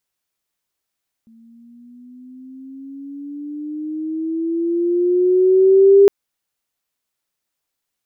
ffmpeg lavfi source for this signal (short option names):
-f lavfi -i "aevalsrc='pow(10,(-5+39.5*(t/4.81-1))/20)*sin(2*PI*225*4.81/(10*log(2)/12)*(exp(10*log(2)/12*t/4.81)-1))':d=4.81:s=44100"